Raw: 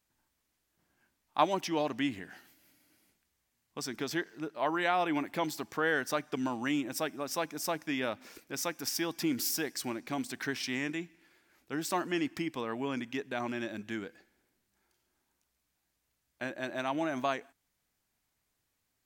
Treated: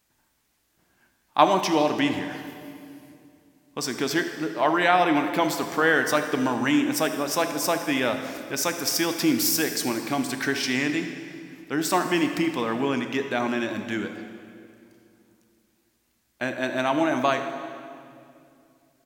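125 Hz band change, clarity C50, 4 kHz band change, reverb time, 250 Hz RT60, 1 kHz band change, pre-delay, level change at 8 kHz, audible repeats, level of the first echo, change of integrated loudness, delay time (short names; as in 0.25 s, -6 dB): +9.0 dB, 7.5 dB, +10.0 dB, 2.5 s, 3.1 s, +10.0 dB, 9 ms, +10.0 dB, 1, -16.0 dB, +9.5 dB, 79 ms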